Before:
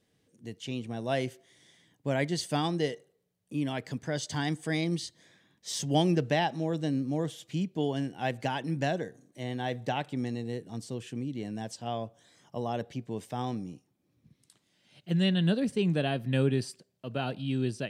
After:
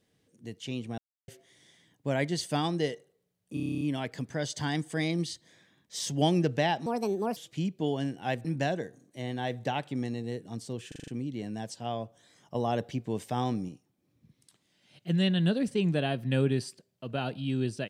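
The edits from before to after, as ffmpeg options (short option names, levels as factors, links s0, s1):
-filter_complex "[0:a]asplit=22[s0][s1][s2][s3][s4][s5][s6][s7][s8][s9][s10][s11][s12][s13][s14][s15][s16][s17][s18][s19][s20][s21];[s0]atrim=end=0.98,asetpts=PTS-STARTPTS,afade=t=out:st=0.976:d=0.004:c=hsin[s22];[s1]atrim=start=0.98:end=1.28,asetpts=PTS-STARTPTS,volume=0[s23];[s2]atrim=start=1.28:end=3.572,asetpts=PTS-STARTPTS,afade=t=in:d=0.004:c=hsin[s24];[s3]atrim=start=3.538:end=3.572[s25];[s4]atrim=start=3.538:end=3.572[s26];[s5]atrim=start=3.538:end=3.572[s27];[s6]atrim=start=3.538:end=3.572[s28];[s7]atrim=start=3.538:end=3.572[s29];[s8]atrim=start=3.538:end=3.572[s30];[s9]atrim=start=3.538:end=3.572[s31];[s10]atrim=start=3.538:end=3.572[s32];[s11]atrim=start=3.538:end=6.594[s33];[s12]atrim=start=6.59:end=7.33,asetpts=PTS-STARTPTS,asetrate=64386,aresample=44100,atrim=end_sample=22352,asetpts=PTS-STARTPTS[s34];[s13]atrim=start=7.326:end=8.412[s35];[s14]atrim=start=8.658:end=11.132[s36];[s15]atrim=start=11.088:end=11.132[s37];[s16]atrim=start=11.088:end=11.132[s38];[s17]atrim=start=11.088:end=11.132[s39];[s18]atrim=start=11.088:end=11.132[s40];[s19]atrim=start=11.088:end=12.562[s41];[s20]atrim=start=12.558:end=13.702,asetpts=PTS-STARTPTS,volume=1.5[s42];[s21]atrim=start=13.698[s43];[s22][s23][s24]concat=n=3:v=0:a=1[s44];[s44][s25]acrossfade=d=0.004:c1=hsin:c2=hsin[s45];[s45][s26]acrossfade=d=0.004:c1=hsin:c2=hsin[s46];[s46][s27]acrossfade=d=0.004:c1=hsin:c2=hsin[s47];[s47][s28]acrossfade=d=0.004:c1=hsin:c2=hsin[s48];[s48][s29]acrossfade=d=0.004:c1=hsin:c2=hsin[s49];[s49][s30]acrossfade=d=0.004:c1=hsin:c2=hsin[s50];[s50][s31]acrossfade=d=0.004:c1=hsin:c2=hsin[s51];[s51][s32]acrossfade=d=0.004:c1=hsin:c2=hsin[s52];[s52][s33]acrossfade=d=0.004:c1=hsin:c2=hsin[s53];[s53][s34]acrossfade=d=0.004:c1=hsin:c2=hsin[s54];[s54][s35]acrossfade=d=0.004:c1=hsin:c2=hsin[s55];[s55][s36]acrossfade=d=0.004:c1=hsin:c2=hsin[s56];[s56][s37]acrossfade=d=0.004:c1=hsin:c2=hsin[s57];[s57][s38]acrossfade=d=0.004:c1=hsin:c2=hsin[s58];[s58][s39]acrossfade=d=0.004:c1=hsin:c2=hsin[s59];[s59][s40]acrossfade=d=0.004:c1=hsin:c2=hsin[s60];[s60][s41]acrossfade=d=0.004:c1=hsin:c2=hsin[s61];[s61][s42]acrossfade=d=0.004:c1=hsin:c2=hsin[s62];[s62][s43]acrossfade=d=0.004:c1=hsin:c2=hsin"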